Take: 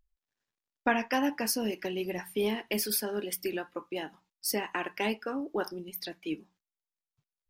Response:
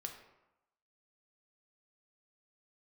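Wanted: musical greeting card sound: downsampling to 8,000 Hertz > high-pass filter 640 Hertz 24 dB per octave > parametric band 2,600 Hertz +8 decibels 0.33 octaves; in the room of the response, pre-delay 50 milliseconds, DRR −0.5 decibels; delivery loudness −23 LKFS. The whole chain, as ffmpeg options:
-filter_complex "[0:a]asplit=2[link_01][link_02];[1:a]atrim=start_sample=2205,adelay=50[link_03];[link_02][link_03]afir=irnorm=-1:irlink=0,volume=3dB[link_04];[link_01][link_04]amix=inputs=2:normalize=0,aresample=8000,aresample=44100,highpass=frequency=640:width=0.5412,highpass=frequency=640:width=1.3066,equalizer=frequency=2600:width_type=o:width=0.33:gain=8,volume=9.5dB"

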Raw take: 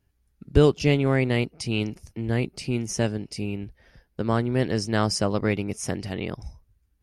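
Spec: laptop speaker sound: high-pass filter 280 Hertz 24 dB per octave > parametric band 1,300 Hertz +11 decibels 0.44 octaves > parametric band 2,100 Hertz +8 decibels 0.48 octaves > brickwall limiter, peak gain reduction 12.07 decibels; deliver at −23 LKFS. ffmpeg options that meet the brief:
ffmpeg -i in.wav -af "highpass=frequency=280:width=0.5412,highpass=frequency=280:width=1.3066,equalizer=frequency=1300:width_type=o:width=0.44:gain=11,equalizer=frequency=2100:width_type=o:width=0.48:gain=8,volume=7.5dB,alimiter=limit=-10dB:level=0:latency=1" out.wav

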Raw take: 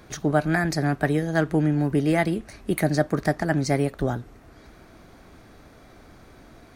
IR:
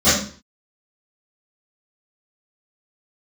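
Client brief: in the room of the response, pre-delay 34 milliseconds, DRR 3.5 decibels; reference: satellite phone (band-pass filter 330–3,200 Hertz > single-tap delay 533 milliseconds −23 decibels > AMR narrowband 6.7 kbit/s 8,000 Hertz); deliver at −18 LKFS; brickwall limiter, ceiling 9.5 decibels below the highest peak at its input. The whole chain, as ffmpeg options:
-filter_complex "[0:a]alimiter=limit=-16.5dB:level=0:latency=1,asplit=2[link_01][link_02];[1:a]atrim=start_sample=2205,adelay=34[link_03];[link_02][link_03]afir=irnorm=-1:irlink=0,volume=-26.5dB[link_04];[link_01][link_04]amix=inputs=2:normalize=0,highpass=330,lowpass=3200,aecho=1:1:533:0.0708,volume=11dB" -ar 8000 -c:a libopencore_amrnb -b:a 6700

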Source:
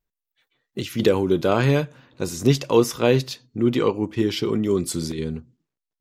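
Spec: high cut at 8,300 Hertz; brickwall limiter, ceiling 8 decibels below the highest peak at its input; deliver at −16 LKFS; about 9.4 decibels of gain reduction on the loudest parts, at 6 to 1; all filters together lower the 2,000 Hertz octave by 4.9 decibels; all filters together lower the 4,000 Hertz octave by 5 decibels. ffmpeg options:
ffmpeg -i in.wav -af "lowpass=8300,equalizer=frequency=2000:width_type=o:gain=-5.5,equalizer=frequency=4000:width_type=o:gain=-4.5,acompressor=threshold=-22dB:ratio=6,volume=15dB,alimiter=limit=-4.5dB:level=0:latency=1" out.wav

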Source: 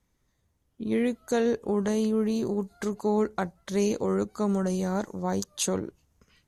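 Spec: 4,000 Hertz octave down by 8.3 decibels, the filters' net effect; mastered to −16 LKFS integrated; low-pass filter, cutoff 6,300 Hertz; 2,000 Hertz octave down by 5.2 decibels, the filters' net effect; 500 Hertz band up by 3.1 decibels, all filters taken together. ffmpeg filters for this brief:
ffmpeg -i in.wav -af "lowpass=6300,equalizer=frequency=500:width_type=o:gain=4,equalizer=frequency=2000:width_type=o:gain=-5.5,equalizer=frequency=4000:width_type=o:gain=-8,volume=10.5dB" out.wav

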